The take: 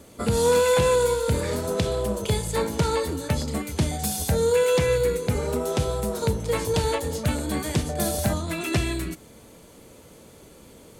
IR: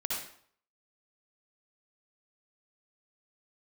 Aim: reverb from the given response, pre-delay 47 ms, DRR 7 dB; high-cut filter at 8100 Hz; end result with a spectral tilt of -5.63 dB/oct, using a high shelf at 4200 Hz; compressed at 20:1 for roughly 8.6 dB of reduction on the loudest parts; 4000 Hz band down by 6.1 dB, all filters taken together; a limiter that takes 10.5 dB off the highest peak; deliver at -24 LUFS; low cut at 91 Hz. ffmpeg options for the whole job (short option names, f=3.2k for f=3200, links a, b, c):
-filter_complex "[0:a]highpass=91,lowpass=8.1k,equalizer=f=4k:t=o:g=-4.5,highshelf=f=4.2k:g=-5,acompressor=threshold=-25dB:ratio=20,alimiter=level_in=1dB:limit=-24dB:level=0:latency=1,volume=-1dB,asplit=2[a][b];[1:a]atrim=start_sample=2205,adelay=47[c];[b][c]afir=irnorm=-1:irlink=0,volume=-11.5dB[d];[a][d]amix=inputs=2:normalize=0,volume=9dB"